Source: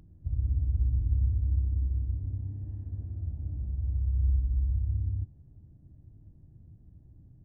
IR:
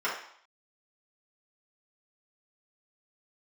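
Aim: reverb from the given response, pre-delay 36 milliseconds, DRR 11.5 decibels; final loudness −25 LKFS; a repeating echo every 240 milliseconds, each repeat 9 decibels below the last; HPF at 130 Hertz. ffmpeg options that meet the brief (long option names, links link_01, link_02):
-filter_complex "[0:a]highpass=130,aecho=1:1:240|480|720|960:0.355|0.124|0.0435|0.0152,asplit=2[link_01][link_02];[1:a]atrim=start_sample=2205,adelay=36[link_03];[link_02][link_03]afir=irnorm=-1:irlink=0,volume=-22dB[link_04];[link_01][link_04]amix=inputs=2:normalize=0,volume=16.5dB"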